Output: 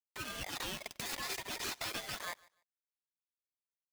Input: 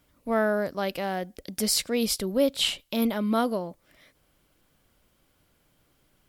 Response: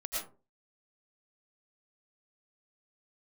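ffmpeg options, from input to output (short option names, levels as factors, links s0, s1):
-filter_complex "[0:a]afftfilt=real='real(if(between(b,1,1008),(2*floor((b-1)/48)+1)*48-b,b),0)':imag='imag(if(between(b,1,1008),(2*floor((b-1)/48)+1)*48-b,b),0)*if(between(b,1,1008),-1,1)':win_size=2048:overlap=0.75,highpass=f=460:p=1,afftfilt=real='re*lt(hypot(re,im),0.0562)':imag='im*lt(hypot(re,im),0.0562)':win_size=1024:overlap=0.75,aemphasis=mode=reproduction:type=50fm,afftfilt=real='re*gte(hypot(re,im),0.000501)':imag='im*gte(hypot(re,im),0.000501)':win_size=1024:overlap=0.75,equalizer=f=7800:t=o:w=0.63:g=-10,aeval=exprs='val(0)*gte(abs(val(0)),0.00422)':c=same,atempo=1.6,aphaser=in_gain=1:out_gain=1:delay=3.6:decay=0.39:speed=0.43:type=triangular,asoftclip=type=tanh:threshold=0.0168,asplit=2[s0][s1];[s1]aecho=0:1:147|294:0.0668|0.014[s2];[s0][s2]amix=inputs=2:normalize=0,aeval=exprs='val(0)*sgn(sin(2*PI*1400*n/s))':c=same,volume=1.78"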